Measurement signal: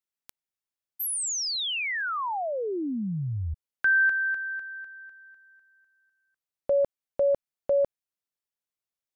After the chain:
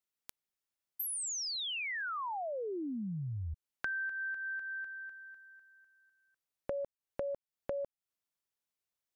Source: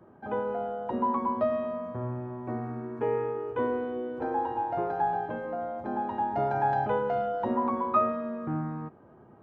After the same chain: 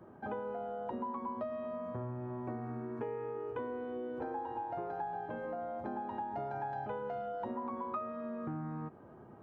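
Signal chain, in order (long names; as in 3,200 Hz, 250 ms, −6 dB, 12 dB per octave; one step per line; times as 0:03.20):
downward compressor 6 to 1, threshold −37 dBFS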